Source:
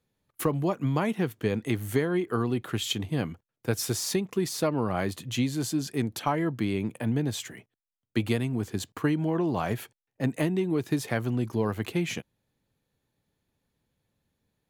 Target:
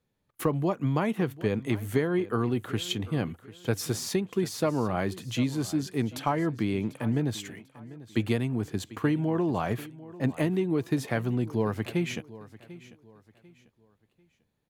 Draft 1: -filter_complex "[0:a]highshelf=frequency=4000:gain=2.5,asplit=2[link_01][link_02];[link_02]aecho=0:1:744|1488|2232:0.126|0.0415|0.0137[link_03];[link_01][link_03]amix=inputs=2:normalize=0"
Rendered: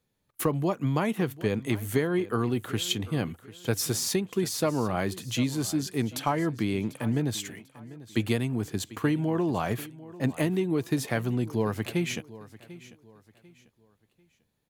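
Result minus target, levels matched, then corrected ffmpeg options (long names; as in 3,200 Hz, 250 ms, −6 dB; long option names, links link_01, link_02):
8,000 Hz band +5.5 dB
-filter_complex "[0:a]highshelf=frequency=4000:gain=-5,asplit=2[link_01][link_02];[link_02]aecho=0:1:744|1488|2232:0.126|0.0415|0.0137[link_03];[link_01][link_03]amix=inputs=2:normalize=0"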